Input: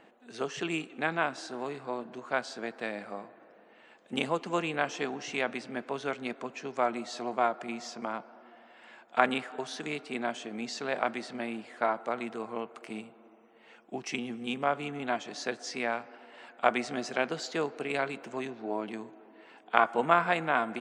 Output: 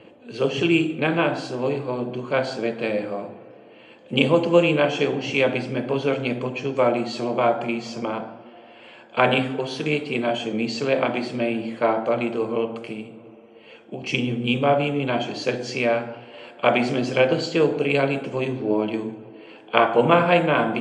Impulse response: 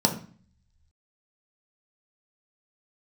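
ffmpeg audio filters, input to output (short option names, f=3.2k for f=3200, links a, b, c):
-filter_complex "[0:a]asettb=1/sr,asplit=3[a][b][c];[a]atrim=end=12.784[d];[b]atrim=start=12.78:end=14.02,asetpts=PTS-STARTPTS,afade=t=in:d=0.004:c=qsin,afade=t=out:st=1.236:d=0.004:c=qsin,acompressor=threshold=-41dB:ratio=6[e];[c]atrim=start=14.016[f];[d][e]acrossfade=d=0.004:c1=hsin:c2=qsin[g];[g][f]acrossfade=d=0.004:c1=qsin:c2=hsin[h];[1:a]atrim=start_sample=2205,afade=t=out:st=0.18:d=0.01,atrim=end_sample=8379,asetrate=25137,aresample=44100[i];[h][i]afir=irnorm=-1:irlink=0,volume=-8dB"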